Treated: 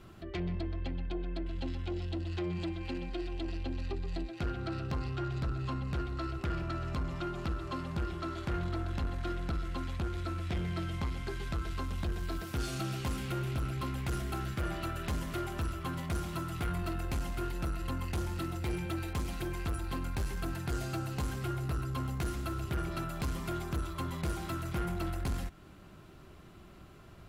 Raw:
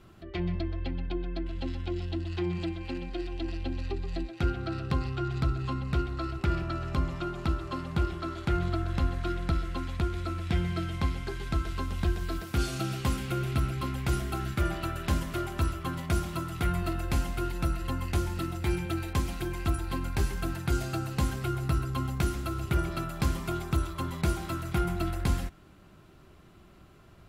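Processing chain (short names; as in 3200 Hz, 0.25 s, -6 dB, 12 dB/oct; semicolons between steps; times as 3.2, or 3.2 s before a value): in parallel at -1 dB: compressor, threshold -38 dBFS, peak gain reduction 15.5 dB; on the sum: soft clip -24.5 dBFS, distortion -12 dB; gain -4 dB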